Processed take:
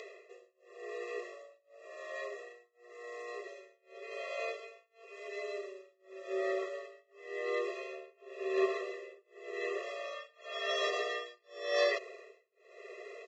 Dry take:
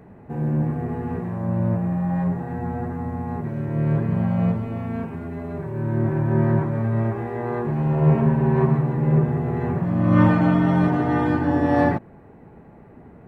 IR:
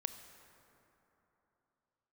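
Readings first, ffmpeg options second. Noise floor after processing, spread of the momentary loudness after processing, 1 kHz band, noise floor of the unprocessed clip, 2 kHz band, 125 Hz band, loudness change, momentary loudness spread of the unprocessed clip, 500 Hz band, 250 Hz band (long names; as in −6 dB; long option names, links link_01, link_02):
−73 dBFS, 21 LU, −16.5 dB, −47 dBFS, −6.5 dB, below −40 dB, −16.0 dB, 11 LU, −9.0 dB, below −25 dB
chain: -af "areverse,acompressor=mode=upward:threshold=-25dB:ratio=2.5,areverse,aexciter=amount=7.9:drive=6:freq=2200,tremolo=f=0.92:d=0.99,aresample=16000,aresample=44100,afftfilt=real='re*eq(mod(floor(b*sr/1024/350),2),1)':imag='im*eq(mod(floor(b*sr/1024/350),2),1)':win_size=1024:overlap=0.75,volume=-4.5dB"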